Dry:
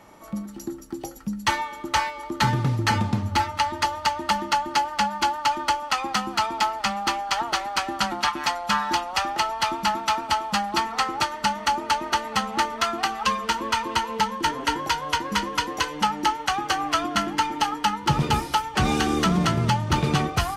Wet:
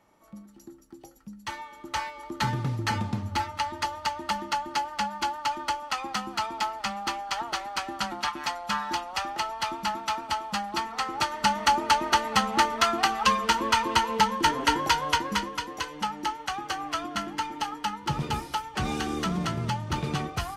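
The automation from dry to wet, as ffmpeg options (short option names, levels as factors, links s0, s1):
-af "volume=1.12,afade=t=in:st=1.44:d=0.82:silence=0.398107,afade=t=in:st=11.02:d=0.58:silence=0.446684,afade=t=out:st=15.03:d=0.55:silence=0.375837"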